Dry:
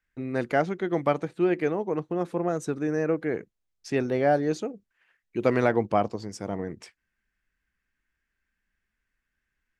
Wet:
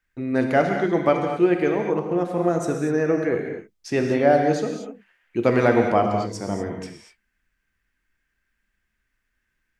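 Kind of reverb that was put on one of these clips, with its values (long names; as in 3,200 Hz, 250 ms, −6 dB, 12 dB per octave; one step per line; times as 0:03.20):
reverb whose tail is shaped and stops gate 270 ms flat, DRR 2.5 dB
level +3.5 dB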